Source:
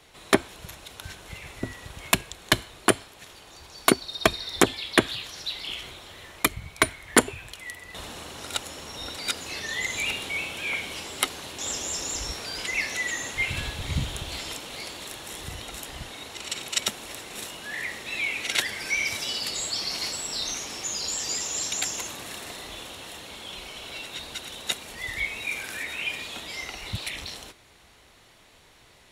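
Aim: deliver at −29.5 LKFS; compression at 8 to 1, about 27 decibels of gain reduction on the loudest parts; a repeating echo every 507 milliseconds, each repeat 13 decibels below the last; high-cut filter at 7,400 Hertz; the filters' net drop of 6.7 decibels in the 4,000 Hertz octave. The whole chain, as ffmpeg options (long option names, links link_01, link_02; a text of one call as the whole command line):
ffmpeg -i in.wav -af "lowpass=7400,equalizer=frequency=4000:width_type=o:gain=-8.5,acompressor=threshold=-43dB:ratio=8,aecho=1:1:507|1014|1521:0.224|0.0493|0.0108,volume=16dB" out.wav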